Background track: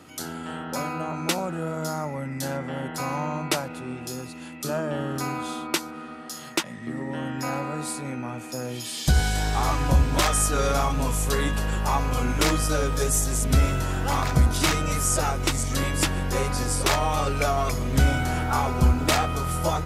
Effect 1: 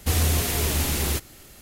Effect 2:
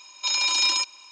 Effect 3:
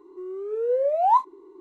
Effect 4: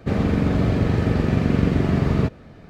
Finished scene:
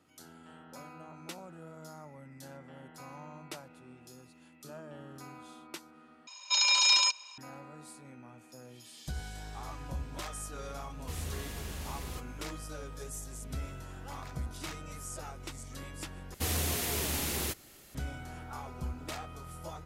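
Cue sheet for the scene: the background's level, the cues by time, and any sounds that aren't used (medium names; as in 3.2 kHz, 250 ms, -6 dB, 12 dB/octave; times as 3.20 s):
background track -19 dB
6.27 s: replace with 2 -2 dB + high-pass 450 Hz 24 dB/octave
11.01 s: add 1 -17.5 dB + treble shelf 11 kHz -8.5 dB
16.34 s: replace with 1 -7 dB + bass shelf 89 Hz -10.5 dB
not used: 3, 4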